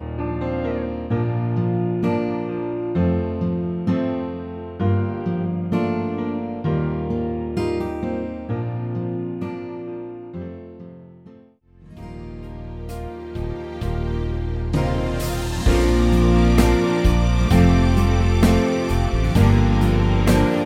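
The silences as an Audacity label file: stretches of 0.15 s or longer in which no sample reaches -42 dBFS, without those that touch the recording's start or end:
11.460000	11.750000	silence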